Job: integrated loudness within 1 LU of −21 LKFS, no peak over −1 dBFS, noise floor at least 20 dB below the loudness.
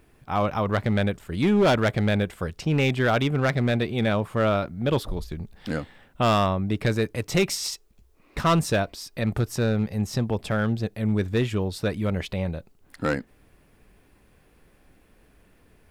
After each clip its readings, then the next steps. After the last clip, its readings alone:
share of clipped samples 1.4%; peaks flattened at −15.0 dBFS; integrated loudness −25.0 LKFS; sample peak −15.0 dBFS; target loudness −21.0 LKFS
→ clipped peaks rebuilt −15 dBFS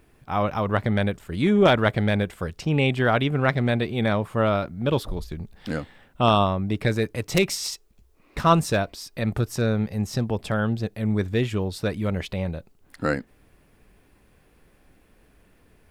share of clipped samples 0.0%; integrated loudness −24.0 LKFS; sample peak −6.0 dBFS; target loudness −21.0 LKFS
→ level +3 dB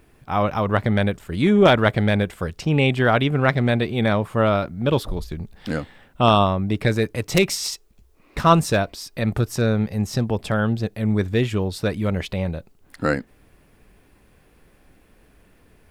integrated loudness −21.0 LKFS; sample peak −3.0 dBFS; background noise floor −56 dBFS

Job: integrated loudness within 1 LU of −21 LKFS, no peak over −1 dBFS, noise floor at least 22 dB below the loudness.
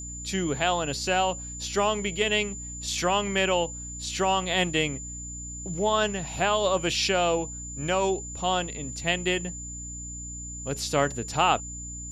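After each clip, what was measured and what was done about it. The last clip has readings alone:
mains hum 60 Hz; hum harmonics up to 300 Hz; level of the hum −39 dBFS; interfering tone 7,100 Hz; level of the tone −37 dBFS; integrated loudness −27.0 LKFS; sample peak −9.5 dBFS; target loudness −21.0 LKFS
→ mains-hum notches 60/120/180/240/300 Hz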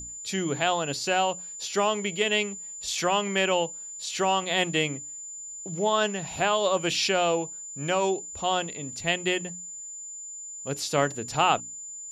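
mains hum none found; interfering tone 7,100 Hz; level of the tone −37 dBFS
→ notch filter 7,100 Hz, Q 30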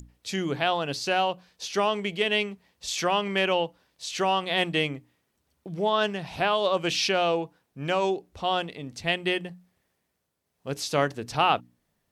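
interfering tone none found; integrated loudness −26.5 LKFS; sample peak −9.5 dBFS; target loudness −21.0 LKFS
→ level +5.5 dB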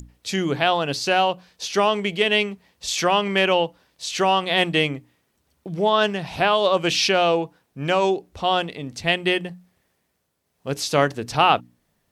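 integrated loudness −21.0 LKFS; sample peak −4.0 dBFS; background noise floor −71 dBFS

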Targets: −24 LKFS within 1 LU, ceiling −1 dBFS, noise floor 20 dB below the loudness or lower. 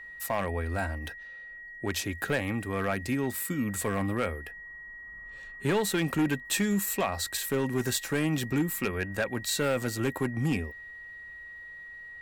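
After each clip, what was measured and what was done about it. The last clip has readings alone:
share of clipped samples 1.0%; peaks flattened at −21.0 dBFS; interfering tone 1,900 Hz; level of the tone −42 dBFS; integrated loudness −30.0 LKFS; sample peak −21.0 dBFS; target loudness −24.0 LKFS
→ clipped peaks rebuilt −21 dBFS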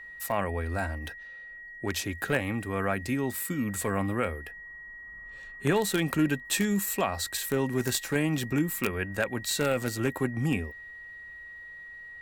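share of clipped samples 0.0%; interfering tone 1,900 Hz; level of the tone −42 dBFS
→ notch filter 1,900 Hz, Q 30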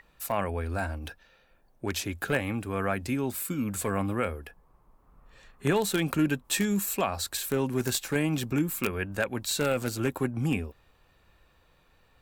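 interfering tone none found; integrated loudness −29.5 LKFS; sample peak −12.0 dBFS; target loudness −24.0 LKFS
→ level +5.5 dB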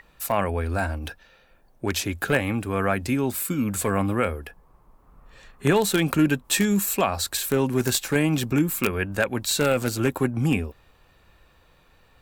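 integrated loudness −24.0 LKFS; sample peak −6.5 dBFS; background noise floor −58 dBFS

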